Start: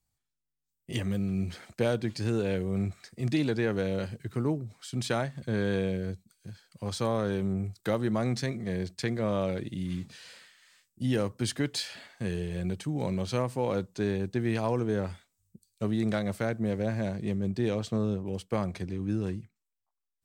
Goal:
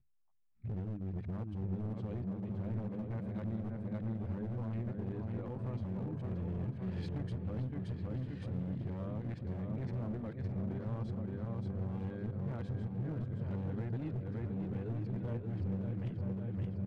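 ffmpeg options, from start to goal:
-filter_complex "[0:a]areverse,highshelf=f=4.3k:g=-10,asplit=2[a][b];[b]aecho=0:1:680|1360|2040|2720|3400:0.447|0.183|0.0751|0.0308|0.0126[c];[a][c]amix=inputs=2:normalize=0,acompressor=threshold=-45dB:ratio=5,bass=f=250:g=14,treble=f=4k:g=-14,bandreject=f=50:t=h:w=6,bandreject=f=100:t=h:w=6,bandreject=f=150:t=h:w=6,bandreject=f=200:t=h:w=6,bandreject=f=250:t=h:w=6,asoftclip=type=hard:threshold=-35dB,asplit=2[d][e];[e]adelay=1132,lowpass=f=1.5k:p=1,volume=-5dB,asplit=2[f][g];[g]adelay=1132,lowpass=f=1.5k:p=1,volume=0.46,asplit=2[h][i];[i]adelay=1132,lowpass=f=1.5k:p=1,volume=0.46,asplit=2[j][k];[k]adelay=1132,lowpass=f=1.5k:p=1,volume=0.46,asplit=2[l][m];[m]adelay=1132,lowpass=f=1.5k:p=1,volume=0.46,asplit=2[n][o];[o]adelay=1132,lowpass=f=1.5k:p=1,volume=0.46[p];[f][h][j][l][n][p]amix=inputs=6:normalize=0[q];[d][q]amix=inputs=2:normalize=0,atempo=1.2"

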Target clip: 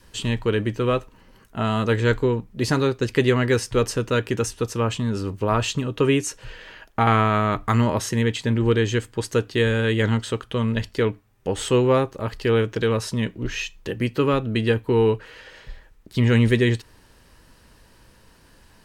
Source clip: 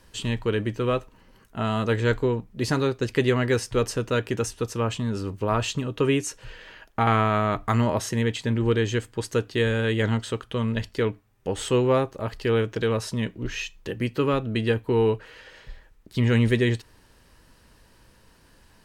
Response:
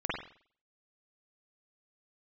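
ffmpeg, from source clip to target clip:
-af "adynamicequalizer=threshold=0.00708:dfrequency=680:dqfactor=3.7:tfrequency=680:tqfactor=3.7:attack=5:release=100:ratio=0.375:range=3:mode=cutabove:tftype=bell,volume=3dB"

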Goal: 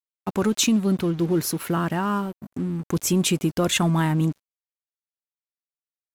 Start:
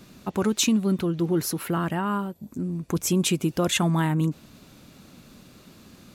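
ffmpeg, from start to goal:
-filter_complex "[0:a]asplit=2[a][b];[b]asoftclip=type=tanh:threshold=-25dB,volume=-3.5dB[c];[a][c]amix=inputs=2:normalize=0,agate=range=-8dB:threshold=-35dB:ratio=16:detection=peak,aeval=exprs='sgn(val(0))*max(abs(val(0))-0.0106,0)':c=same"

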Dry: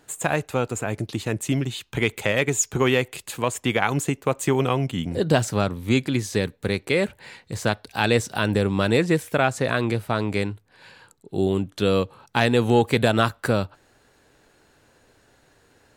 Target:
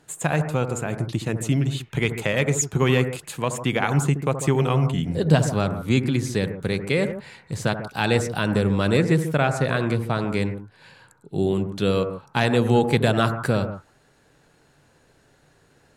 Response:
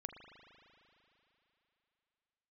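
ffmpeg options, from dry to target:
-filter_complex "[0:a]equalizer=f=150:w=2.9:g=8.5[a];[1:a]atrim=start_sample=2205,atrim=end_sample=4410,asetrate=23814,aresample=44100[b];[a][b]afir=irnorm=-1:irlink=0"

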